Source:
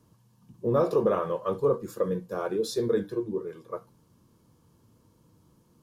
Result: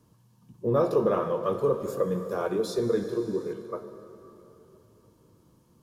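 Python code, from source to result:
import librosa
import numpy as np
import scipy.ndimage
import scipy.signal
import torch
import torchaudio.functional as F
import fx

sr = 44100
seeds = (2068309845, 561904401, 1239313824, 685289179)

y = fx.rev_plate(x, sr, seeds[0], rt60_s=3.5, hf_ratio=0.75, predelay_ms=0, drr_db=8.5)
y = fx.band_squash(y, sr, depth_pct=40, at=(1.43, 3.53))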